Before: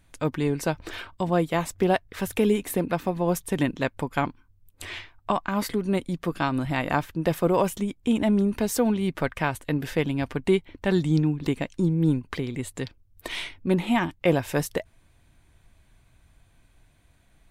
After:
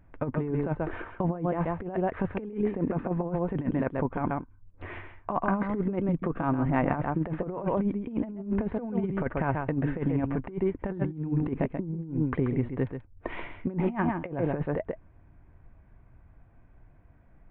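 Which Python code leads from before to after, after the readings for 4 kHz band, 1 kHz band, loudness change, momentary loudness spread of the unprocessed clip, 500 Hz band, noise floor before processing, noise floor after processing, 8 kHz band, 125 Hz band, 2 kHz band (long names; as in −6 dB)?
below −20 dB, −3.5 dB, −4.0 dB, 10 LU, −5.0 dB, −61 dBFS, −56 dBFS, below −40 dB, −2.0 dB, −7.0 dB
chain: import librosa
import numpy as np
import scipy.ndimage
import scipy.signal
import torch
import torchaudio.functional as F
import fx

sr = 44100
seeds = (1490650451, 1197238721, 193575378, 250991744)

y = scipy.ndimage.gaussian_filter1d(x, 5.1, mode='constant')
y = y + 10.0 ** (-9.0 / 20.0) * np.pad(y, (int(134 * sr / 1000.0), 0))[:len(y)]
y = fx.over_compress(y, sr, threshold_db=-27.0, ratio=-0.5)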